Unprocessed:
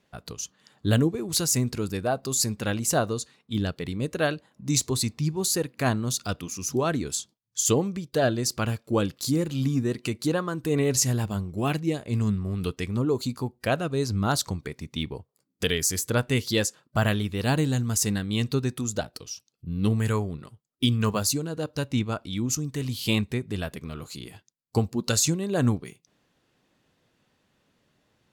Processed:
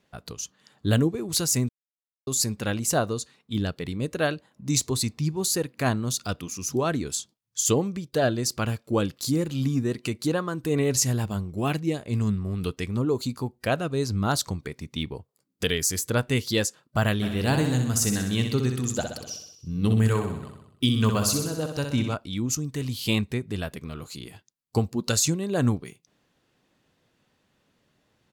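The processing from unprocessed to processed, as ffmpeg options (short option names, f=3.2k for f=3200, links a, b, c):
-filter_complex "[0:a]asplit=3[a][b][c];[a]afade=t=out:st=17.21:d=0.02[d];[b]aecho=1:1:63|126|189|252|315|378|441|504:0.473|0.284|0.17|0.102|0.0613|0.0368|0.0221|0.0132,afade=t=in:st=17.21:d=0.02,afade=t=out:st=22.14:d=0.02[e];[c]afade=t=in:st=22.14:d=0.02[f];[d][e][f]amix=inputs=3:normalize=0,asplit=3[g][h][i];[g]atrim=end=1.69,asetpts=PTS-STARTPTS,afade=t=out:st=1.686:d=0.004:c=hsin[j];[h]atrim=start=1.69:end=2.27,asetpts=PTS-STARTPTS,volume=0[k];[i]atrim=start=2.27,asetpts=PTS-STARTPTS,afade=t=in:d=0.004:c=hsin[l];[j][k][l]concat=n=3:v=0:a=1"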